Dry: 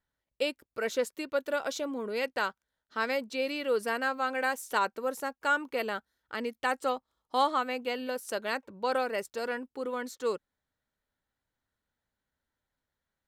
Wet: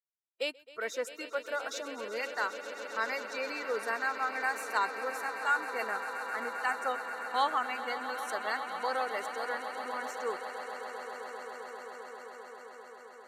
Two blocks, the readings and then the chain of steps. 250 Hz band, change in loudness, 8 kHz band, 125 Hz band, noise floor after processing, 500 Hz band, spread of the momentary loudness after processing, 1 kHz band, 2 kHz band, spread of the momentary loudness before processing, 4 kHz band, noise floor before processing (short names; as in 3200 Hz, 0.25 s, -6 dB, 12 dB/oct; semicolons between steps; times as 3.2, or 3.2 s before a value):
-10.0 dB, -2.5 dB, -1.5 dB, n/a, -53 dBFS, -5.0 dB, 13 LU, -0.5 dB, +0.5 dB, 7 LU, -2.5 dB, under -85 dBFS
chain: spectral noise reduction 21 dB; weighting filter A; swelling echo 0.132 s, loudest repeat 8, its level -15 dB; gain -2 dB